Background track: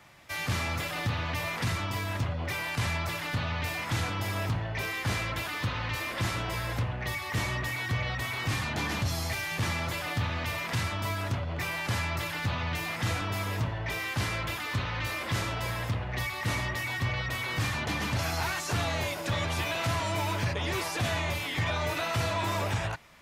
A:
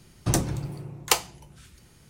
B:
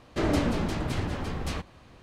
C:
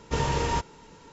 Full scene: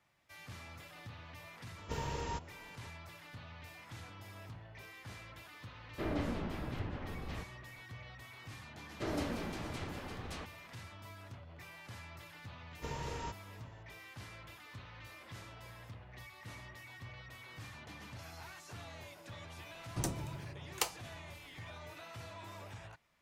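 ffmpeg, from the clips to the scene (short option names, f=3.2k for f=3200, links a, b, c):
-filter_complex "[3:a]asplit=2[a][b];[2:a]asplit=2[c][d];[0:a]volume=-19.5dB[e];[a]acompressor=mode=upward:threshold=-37dB:ratio=2.5:attack=3.2:release=140:knee=2.83:detection=peak[f];[c]lowpass=3.5k[g];[d]lowshelf=f=170:g=-7[h];[f]atrim=end=1.12,asetpts=PTS-STARTPTS,volume=-13dB,afade=t=in:d=0.004:c=hsin,afade=t=out:st=1.116:d=0.004:c=hsin,adelay=1780[i];[g]atrim=end=2.02,asetpts=PTS-STARTPTS,volume=-11dB,afade=t=in:d=0.004:c=hsin,afade=t=out:st=2.016:d=0.004:c=hsin,adelay=5820[j];[h]atrim=end=2.02,asetpts=PTS-STARTPTS,volume=-10dB,afade=t=in:d=0.004:c=hsin,afade=t=out:st=2.016:d=0.004:c=hsin,adelay=8840[k];[b]atrim=end=1.12,asetpts=PTS-STARTPTS,volume=-15.5dB,afade=t=in:d=0.004:c=hsin,afade=t=out:st=1.116:d=0.004:c=hsin,adelay=12710[l];[1:a]atrim=end=2.09,asetpts=PTS-STARTPTS,volume=-13dB,afade=t=in:d=0.004:c=hsin,afade=t=out:st=2.086:d=0.004:c=hsin,adelay=19700[m];[e][i][j][k][l][m]amix=inputs=6:normalize=0"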